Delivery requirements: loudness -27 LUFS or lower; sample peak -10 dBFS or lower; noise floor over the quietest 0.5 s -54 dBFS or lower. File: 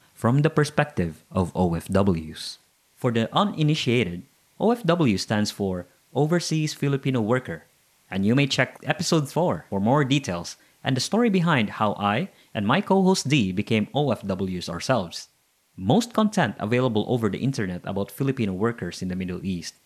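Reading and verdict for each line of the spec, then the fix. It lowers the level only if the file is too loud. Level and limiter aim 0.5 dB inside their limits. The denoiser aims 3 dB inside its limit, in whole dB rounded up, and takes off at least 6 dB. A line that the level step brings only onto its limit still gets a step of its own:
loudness -24.0 LUFS: fail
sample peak -6.0 dBFS: fail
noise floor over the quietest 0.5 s -65 dBFS: OK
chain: gain -3.5 dB; limiter -10.5 dBFS

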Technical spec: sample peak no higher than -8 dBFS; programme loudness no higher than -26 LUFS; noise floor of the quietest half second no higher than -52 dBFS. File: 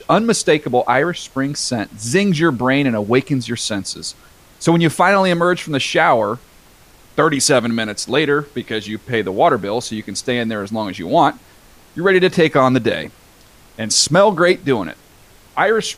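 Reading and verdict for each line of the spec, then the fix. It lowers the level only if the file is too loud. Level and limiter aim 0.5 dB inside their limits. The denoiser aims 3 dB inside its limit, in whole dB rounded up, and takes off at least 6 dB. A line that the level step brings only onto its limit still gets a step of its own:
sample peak -2.5 dBFS: fail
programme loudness -16.5 LUFS: fail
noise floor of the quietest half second -47 dBFS: fail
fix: gain -10 dB

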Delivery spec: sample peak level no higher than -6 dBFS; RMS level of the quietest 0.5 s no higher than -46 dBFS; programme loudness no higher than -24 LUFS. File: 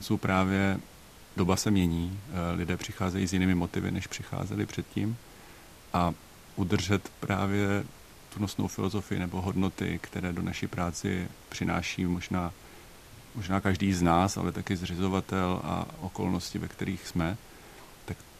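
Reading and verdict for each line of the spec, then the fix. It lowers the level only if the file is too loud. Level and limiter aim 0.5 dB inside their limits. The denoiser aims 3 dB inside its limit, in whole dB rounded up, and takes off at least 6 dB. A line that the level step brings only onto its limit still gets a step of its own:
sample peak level -9.0 dBFS: OK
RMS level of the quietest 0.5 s -51 dBFS: OK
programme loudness -30.5 LUFS: OK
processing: none

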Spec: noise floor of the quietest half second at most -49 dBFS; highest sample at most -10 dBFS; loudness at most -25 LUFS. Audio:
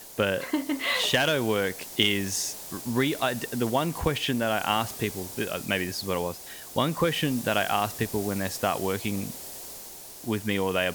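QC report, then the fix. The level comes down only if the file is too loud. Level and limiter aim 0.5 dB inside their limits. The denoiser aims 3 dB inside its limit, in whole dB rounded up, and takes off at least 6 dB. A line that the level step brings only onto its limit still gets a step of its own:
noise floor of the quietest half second -43 dBFS: fail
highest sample -6.5 dBFS: fail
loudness -27.0 LUFS: OK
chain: denoiser 9 dB, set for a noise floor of -43 dBFS; limiter -10.5 dBFS

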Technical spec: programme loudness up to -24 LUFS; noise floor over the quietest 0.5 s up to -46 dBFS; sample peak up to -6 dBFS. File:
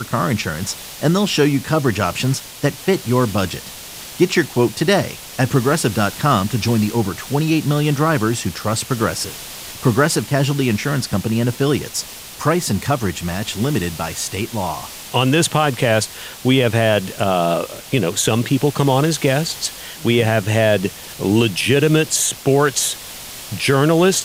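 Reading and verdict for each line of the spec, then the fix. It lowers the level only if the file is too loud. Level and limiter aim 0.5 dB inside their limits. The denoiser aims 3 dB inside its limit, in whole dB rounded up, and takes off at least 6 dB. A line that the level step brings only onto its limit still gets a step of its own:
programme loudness -18.0 LUFS: fail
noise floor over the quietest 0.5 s -34 dBFS: fail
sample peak -2.5 dBFS: fail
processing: denoiser 9 dB, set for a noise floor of -34 dBFS; gain -6.5 dB

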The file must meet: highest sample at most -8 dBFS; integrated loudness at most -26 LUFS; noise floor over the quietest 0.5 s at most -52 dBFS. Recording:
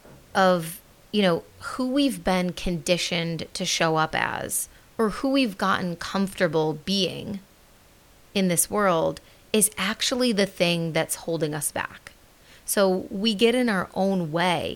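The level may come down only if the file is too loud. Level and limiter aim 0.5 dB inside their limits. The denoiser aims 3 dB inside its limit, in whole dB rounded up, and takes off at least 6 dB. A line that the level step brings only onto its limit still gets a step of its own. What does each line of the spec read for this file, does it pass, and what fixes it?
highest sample -5.5 dBFS: fail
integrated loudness -24.0 LUFS: fail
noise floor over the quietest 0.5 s -54 dBFS: OK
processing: gain -2.5 dB; limiter -8.5 dBFS

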